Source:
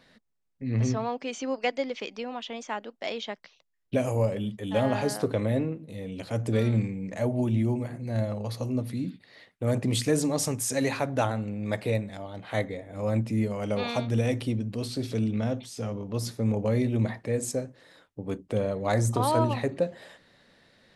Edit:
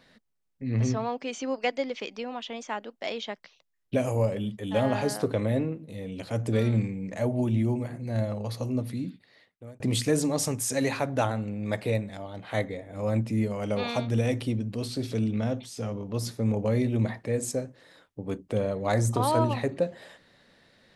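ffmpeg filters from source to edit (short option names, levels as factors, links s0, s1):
-filter_complex "[0:a]asplit=2[s0][s1];[s0]atrim=end=9.8,asetpts=PTS-STARTPTS,afade=t=out:st=8.88:d=0.92[s2];[s1]atrim=start=9.8,asetpts=PTS-STARTPTS,afade=t=in:d=0.004:c=hsin[s3];[s2][s3]concat=n=2:v=0:a=1"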